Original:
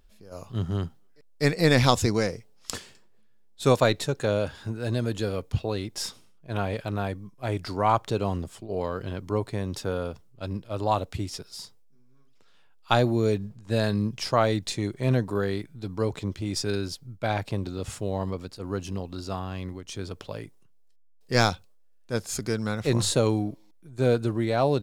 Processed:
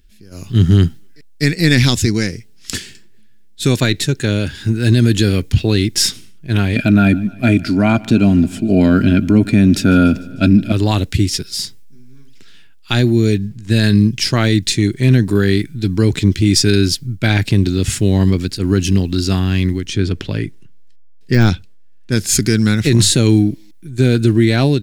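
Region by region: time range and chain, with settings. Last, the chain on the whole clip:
6.76–10.72 small resonant body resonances 240/630/1400/2400 Hz, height 16 dB, ringing for 35 ms + feedback echo 0.149 s, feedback 58%, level -23 dB
19.87–22.12 LPF 2500 Hz 6 dB/oct + de-esser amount 90%
whole clip: AGC gain up to 12 dB; band shelf 770 Hz -15 dB; maximiser +9 dB; gain -1 dB

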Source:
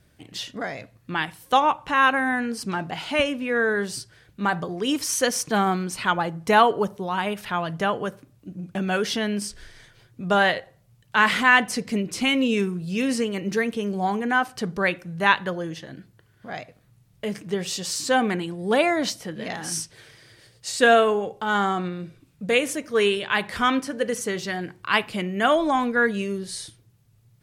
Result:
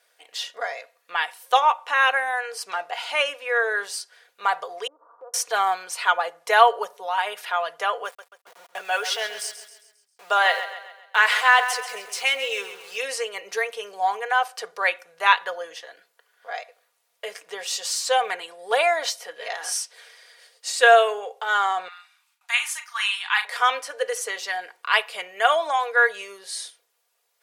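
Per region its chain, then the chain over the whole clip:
4.87–5.34 steep low-pass 1300 Hz 72 dB/oct + compressor 8:1, threshold -38 dBFS
8.05–12.98 HPF 240 Hz 6 dB/oct + sample gate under -41 dBFS + feedback echo 0.134 s, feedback 46%, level -11.5 dB
21.88–23.45 gate with hold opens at -48 dBFS, closes at -57 dBFS + Chebyshev high-pass 800 Hz, order 6 + doubler 39 ms -8.5 dB
whole clip: inverse Chebyshev high-pass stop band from 260 Hz, stop band 40 dB; comb 4.2 ms, depth 48%; gain +1 dB

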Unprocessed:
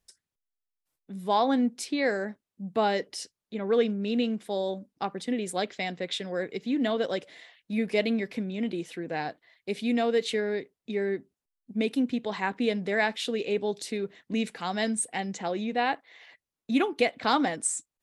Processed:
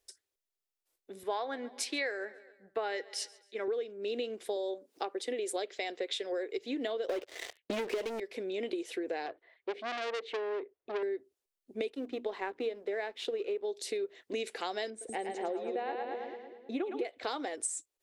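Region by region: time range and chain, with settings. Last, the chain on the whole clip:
1.23–3.68 bell 1700 Hz +11 dB 1.5 oct + feedback echo 0.137 s, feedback 53%, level -23 dB + three-band expander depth 70%
4.56–6.58 HPF 230 Hz + upward compressor, threshold -44 dBFS
7.09–8.2 Bessel low-pass 2800 Hz + sample leveller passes 5
9.26–11.03 LPF 1900 Hz + core saturation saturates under 2600 Hz
11.9–13.65 G.711 law mismatch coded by A + LPF 2000 Hz 6 dB/oct + notches 60/120/180/240/300/360 Hz
14.9–17.05 LPF 1000 Hz 6 dB/oct + split-band echo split 480 Hz, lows 0.191 s, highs 0.11 s, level -5 dB
whole clip: EQ curve 110 Hz 0 dB, 160 Hz -19 dB, 380 Hz +15 dB, 1000 Hz +6 dB, 3800 Hz +10 dB; compressor 16:1, threshold -24 dBFS; gain -7.5 dB

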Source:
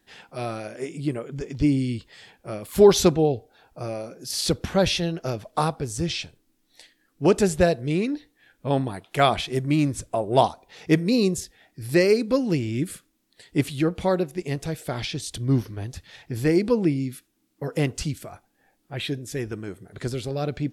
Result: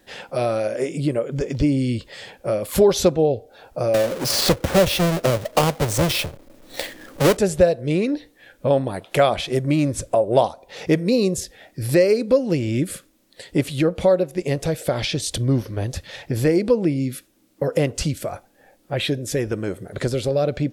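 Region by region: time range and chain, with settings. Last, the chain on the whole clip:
3.94–7.37 half-waves squared off + three-band squash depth 40%
whole clip: bell 550 Hz +11 dB 0.39 oct; compressor 2:1, threshold -31 dBFS; gain +9 dB

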